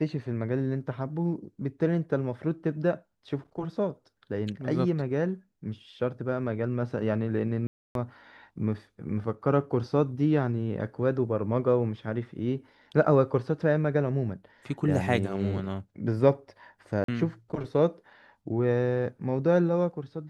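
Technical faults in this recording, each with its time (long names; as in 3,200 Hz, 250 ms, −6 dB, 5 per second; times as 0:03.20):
0:07.67–0:07.95: drop-out 282 ms
0:17.04–0:17.08: drop-out 43 ms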